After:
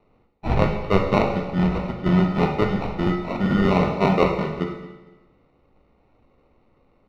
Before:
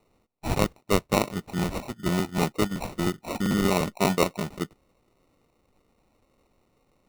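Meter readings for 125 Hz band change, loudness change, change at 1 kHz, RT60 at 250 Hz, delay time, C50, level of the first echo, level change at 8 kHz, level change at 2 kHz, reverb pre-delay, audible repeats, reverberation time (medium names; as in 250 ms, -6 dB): +7.0 dB, +5.5 dB, +5.5 dB, 1.2 s, 226 ms, 4.5 dB, -18.5 dB, under -15 dB, +3.5 dB, 14 ms, 1, 1.1 s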